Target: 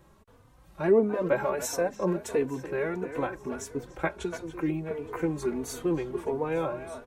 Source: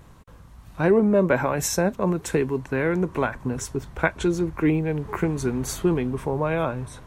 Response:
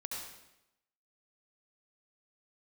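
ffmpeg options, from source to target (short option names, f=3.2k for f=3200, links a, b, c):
-filter_complex "[0:a]bass=f=250:g=-10,treble=f=4k:g=-3,acrossover=split=680|1000[a][b][c];[a]acontrast=64[d];[d][b][c]amix=inputs=3:normalize=0,highshelf=f=4.8k:g=5,asplit=2[e][f];[f]aecho=0:1:868|1736|2604:0.0794|0.0286|0.0103[g];[e][g]amix=inputs=2:normalize=0,asettb=1/sr,asplit=3[h][i][j];[h]atrim=end=4.094[k];[i]atrim=start=4.09:end=4.91,asetpts=PTS-STARTPTS,afade=t=in:d=0.004:c=qsin,afade=t=out:st=0.816:d=0.004:c=qsin,acrossover=split=170|3000[l][m][n];[m]acompressor=threshold=-22dB:ratio=2.5[o];[l][o][n]amix=inputs=3:normalize=0[p];[j]atrim=start=4.906[q];[k][p]acrossfade=d=0.004:c1=hsin:c2=qsin[r];[r][q]acrossfade=d=0.004:c1=qsin:c2=hsin,asplit=2[s][t];[t]adelay=290,highpass=300,lowpass=3.4k,asoftclip=type=hard:threshold=-13.5dB,volume=-10dB[u];[s][u]amix=inputs=2:normalize=0,asplit=2[v][w];[w]adelay=3.3,afreqshift=1.5[x];[v][x]amix=inputs=2:normalize=1,volume=-5.5dB"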